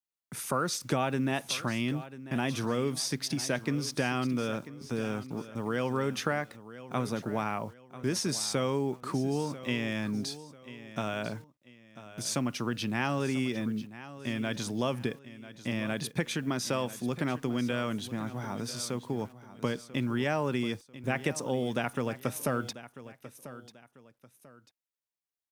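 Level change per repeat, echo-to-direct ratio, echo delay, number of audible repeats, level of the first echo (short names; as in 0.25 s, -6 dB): -9.5 dB, -14.5 dB, 0.992 s, 2, -15.0 dB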